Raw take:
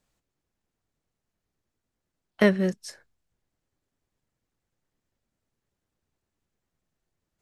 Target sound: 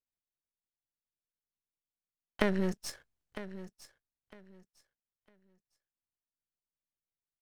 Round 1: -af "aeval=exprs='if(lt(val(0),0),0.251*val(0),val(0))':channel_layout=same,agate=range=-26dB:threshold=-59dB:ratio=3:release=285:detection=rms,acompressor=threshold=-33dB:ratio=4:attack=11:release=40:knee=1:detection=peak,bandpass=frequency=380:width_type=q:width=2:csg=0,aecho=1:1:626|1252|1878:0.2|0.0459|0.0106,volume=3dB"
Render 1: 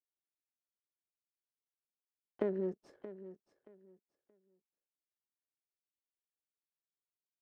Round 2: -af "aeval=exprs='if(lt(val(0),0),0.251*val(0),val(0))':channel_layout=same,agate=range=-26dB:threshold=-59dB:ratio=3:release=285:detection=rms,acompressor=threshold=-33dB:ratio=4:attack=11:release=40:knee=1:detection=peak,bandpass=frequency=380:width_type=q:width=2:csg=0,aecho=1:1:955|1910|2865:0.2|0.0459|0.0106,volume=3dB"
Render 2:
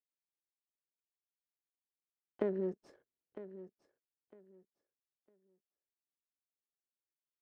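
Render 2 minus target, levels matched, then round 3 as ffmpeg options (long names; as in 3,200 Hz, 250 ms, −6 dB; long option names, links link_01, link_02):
500 Hz band +3.0 dB
-af "aeval=exprs='if(lt(val(0),0),0.251*val(0),val(0))':channel_layout=same,agate=range=-26dB:threshold=-59dB:ratio=3:release=285:detection=rms,acompressor=threshold=-33dB:ratio=4:attack=11:release=40:knee=1:detection=peak,aecho=1:1:955|1910|2865:0.2|0.0459|0.0106,volume=3dB"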